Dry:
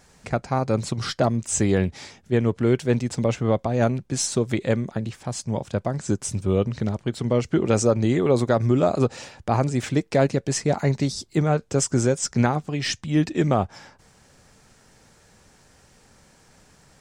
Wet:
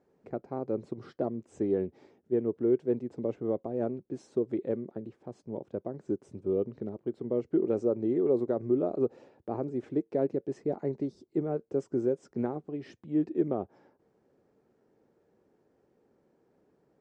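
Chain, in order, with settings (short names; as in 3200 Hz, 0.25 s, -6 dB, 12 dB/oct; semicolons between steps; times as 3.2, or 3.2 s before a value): band-pass 370 Hz, Q 2.4; gain -3 dB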